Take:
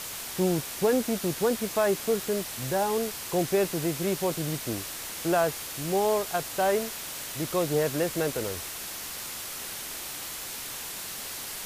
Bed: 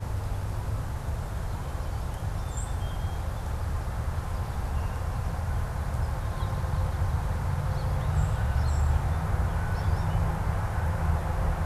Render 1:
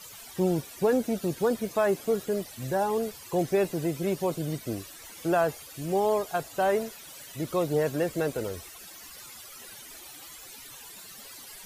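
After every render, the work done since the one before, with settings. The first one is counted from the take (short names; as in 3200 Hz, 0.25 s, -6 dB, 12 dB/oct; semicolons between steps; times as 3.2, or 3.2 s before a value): denoiser 15 dB, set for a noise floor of -38 dBFS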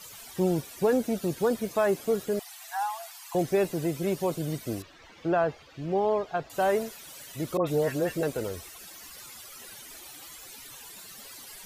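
2.39–3.35 brick-wall FIR high-pass 660 Hz; 4.82–6.5 air absorption 210 m; 7.57–8.23 dispersion highs, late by 97 ms, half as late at 1600 Hz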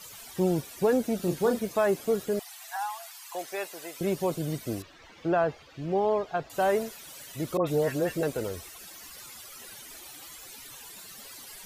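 1.16–1.59 doubler 34 ms -7.5 dB; 2.76–4.01 HPF 820 Hz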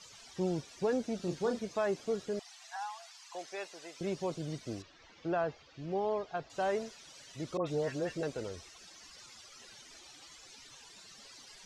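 ladder low-pass 7100 Hz, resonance 35%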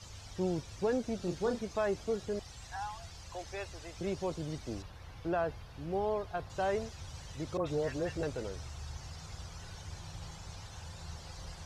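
add bed -19.5 dB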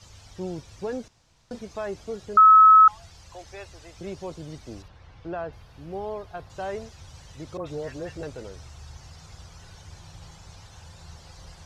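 1.08–1.51 room tone; 2.37–2.88 bleep 1290 Hz -9 dBFS; 4.88–5.53 air absorption 81 m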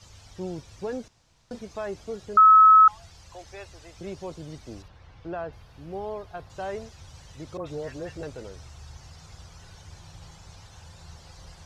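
gain -1 dB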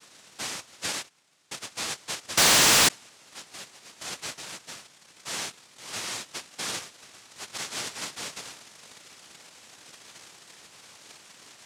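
noise vocoder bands 1; overloaded stage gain 16.5 dB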